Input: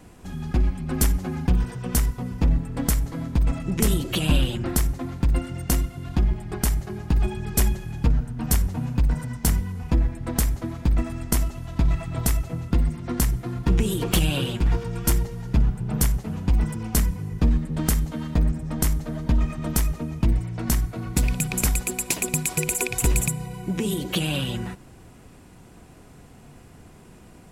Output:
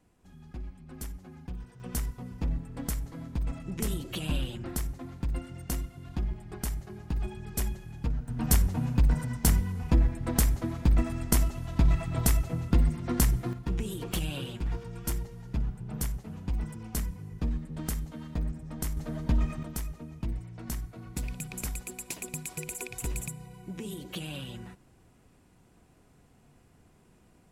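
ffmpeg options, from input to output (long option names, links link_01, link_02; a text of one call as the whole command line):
ffmpeg -i in.wav -af "asetnsamples=nb_out_samples=441:pad=0,asendcmd='1.8 volume volume -10.5dB;8.28 volume volume -2dB;13.53 volume volume -11dB;18.97 volume volume -5dB;19.63 volume volume -13dB',volume=-19dB" out.wav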